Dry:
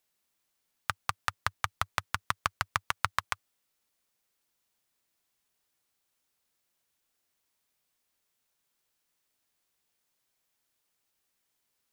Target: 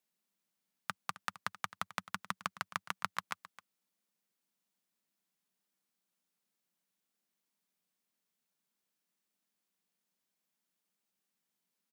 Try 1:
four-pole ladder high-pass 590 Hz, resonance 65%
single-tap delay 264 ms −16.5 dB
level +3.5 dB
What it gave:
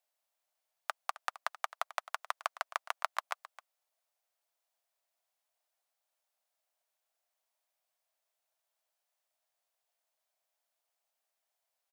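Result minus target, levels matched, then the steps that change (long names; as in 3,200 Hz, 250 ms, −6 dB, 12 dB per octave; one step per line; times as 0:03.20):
500 Hz band +7.0 dB
change: four-pole ladder high-pass 170 Hz, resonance 65%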